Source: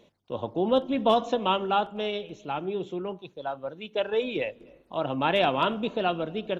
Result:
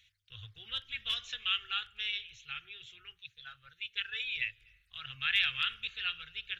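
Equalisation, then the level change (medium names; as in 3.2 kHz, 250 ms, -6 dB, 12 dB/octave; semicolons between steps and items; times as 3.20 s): inverse Chebyshev band-stop 180–990 Hz, stop band 40 dB; tone controls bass -5 dB, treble -4 dB; +3.0 dB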